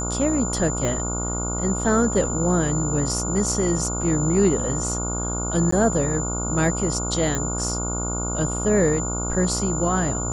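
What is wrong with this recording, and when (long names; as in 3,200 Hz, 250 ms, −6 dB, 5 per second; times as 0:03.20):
mains buzz 60 Hz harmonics 24 −28 dBFS
whistle 7,100 Hz −28 dBFS
0:00.85: click −13 dBFS
0:05.71–0:05.72: drop-out 14 ms
0:07.35: click −11 dBFS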